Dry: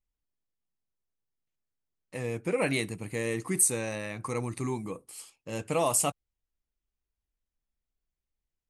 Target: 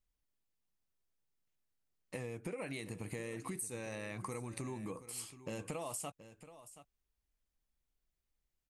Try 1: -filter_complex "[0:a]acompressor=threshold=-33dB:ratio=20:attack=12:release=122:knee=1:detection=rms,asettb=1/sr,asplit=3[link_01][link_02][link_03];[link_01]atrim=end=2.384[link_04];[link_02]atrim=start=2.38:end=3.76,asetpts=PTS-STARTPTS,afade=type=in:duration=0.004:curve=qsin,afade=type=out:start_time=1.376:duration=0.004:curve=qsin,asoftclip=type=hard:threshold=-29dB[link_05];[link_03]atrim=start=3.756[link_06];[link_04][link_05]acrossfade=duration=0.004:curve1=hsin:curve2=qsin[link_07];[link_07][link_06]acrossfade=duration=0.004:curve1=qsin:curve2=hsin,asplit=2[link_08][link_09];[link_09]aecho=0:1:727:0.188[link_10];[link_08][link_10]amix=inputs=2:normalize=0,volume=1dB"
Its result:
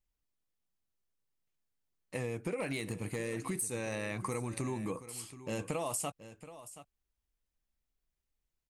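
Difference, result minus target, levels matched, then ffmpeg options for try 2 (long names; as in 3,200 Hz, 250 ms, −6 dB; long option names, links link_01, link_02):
downward compressor: peak gain reduction −6 dB
-filter_complex "[0:a]acompressor=threshold=-39.5dB:ratio=20:attack=12:release=122:knee=1:detection=rms,asettb=1/sr,asplit=3[link_01][link_02][link_03];[link_01]atrim=end=2.384[link_04];[link_02]atrim=start=2.38:end=3.76,asetpts=PTS-STARTPTS,afade=type=in:duration=0.004:curve=qsin,afade=type=out:start_time=1.376:duration=0.004:curve=qsin,asoftclip=type=hard:threshold=-29dB[link_05];[link_03]atrim=start=3.756[link_06];[link_04][link_05]acrossfade=duration=0.004:curve1=hsin:curve2=qsin[link_07];[link_07][link_06]acrossfade=duration=0.004:curve1=qsin:curve2=hsin,asplit=2[link_08][link_09];[link_09]aecho=0:1:727:0.188[link_10];[link_08][link_10]amix=inputs=2:normalize=0,volume=1dB"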